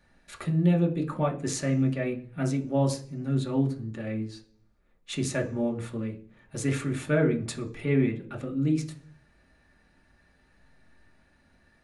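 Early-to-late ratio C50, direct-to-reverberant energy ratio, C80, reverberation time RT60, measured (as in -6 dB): 13.5 dB, 0.5 dB, 19.0 dB, 0.45 s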